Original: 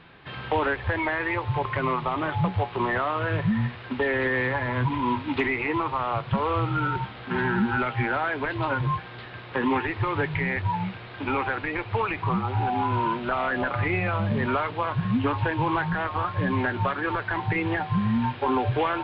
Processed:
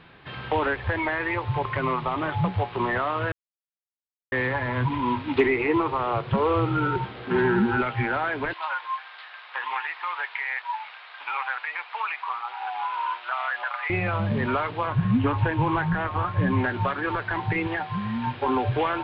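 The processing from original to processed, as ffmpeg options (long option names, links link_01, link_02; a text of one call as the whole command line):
ffmpeg -i in.wav -filter_complex "[0:a]asettb=1/sr,asplit=3[link_01][link_02][link_03];[link_01]atrim=end=5.374[link_04];[link_02]atrim=start=5.37:end=7.81,asetpts=PTS-STARTPTS,afade=type=in:duration=0.004:curve=qsin,afade=type=out:start_time=2.436:duration=0.004:curve=qsin,equalizer=frequency=400:width_type=o:width=0.77:gain=8.5[link_05];[link_03]atrim=start=7.806[link_06];[link_04][link_05]acrossfade=duration=0.004:curve1=hsin:curve2=qsin[link_07];[link_07][link_06]acrossfade=duration=0.004:curve1=qsin:curve2=hsin,asettb=1/sr,asplit=3[link_08][link_09][link_10];[link_08]atrim=end=8.534[link_11];[link_09]atrim=start=8.53:end=13.9,asetpts=PTS-STARTPTS,afade=type=in:duration=0.004:curve=qsin,afade=type=out:start_time=5.366:duration=0.004:curve=qsin,highpass=frequency=840:width=0.5412,highpass=frequency=840:width=1.3066[link_12];[link_10]atrim=start=13.896[link_13];[link_11][link_12]acrossfade=duration=0.004:curve1=hsin:curve2=qsin[link_14];[link_14][link_13]acrossfade=duration=0.004:curve1=qsin:curve2=hsin,asettb=1/sr,asplit=3[link_15][link_16][link_17];[link_15]atrim=end=14.874[link_18];[link_16]atrim=start=14.87:end=16.64,asetpts=PTS-STARTPTS,afade=type=in:duration=0.004:curve=qsin,afade=type=out:start_time=1.766:duration=0.004:curve=qsin,bass=frequency=250:gain=4,treble=frequency=4000:gain=-7[link_19];[link_17]atrim=start=16.636[link_20];[link_18][link_19]acrossfade=duration=0.004:curve1=hsin:curve2=qsin[link_21];[link_21][link_20]acrossfade=duration=0.004:curve1=qsin:curve2=hsin,asettb=1/sr,asplit=3[link_22][link_23][link_24];[link_22]atrim=end=17.674[link_25];[link_23]atrim=start=17.67:end=18.27,asetpts=PTS-STARTPTS,afade=type=in:duration=0.004:curve=qsin,afade=type=out:start_time=0.596:duration=0.004:curve=qsin,lowshelf=frequency=330:gain=-7.5[link_26];[link_24]atrim=start=18.266[link_27];[link_25][link_26]acrossfade=duration=0.004:curve1=hsin:curve2=qsin[link_28];[link_28][link_27]acrossfade=duration=0.004:curve1=qsin:curve2=hsin,asplit=3[link_29][link_30][link_31];[link_29]atrim=end=3.32,asetpts=PTS-STARTPTS,afade=type=out:start_time=3.316:duration=0.004:curve=hsin[link_32];[link_30]atrim=start=3.32:end=4.32,asetpts=PTS-STARTPTS,volume=0[link_33];[link_31]atrim=start=4.32,asetpts=PTS-STARTPTS,afade=type=in:duration=0.004:curve=hsin[link_34];[link_32][link_33][link_34]concat=n=3:v=0:a=1" out.wav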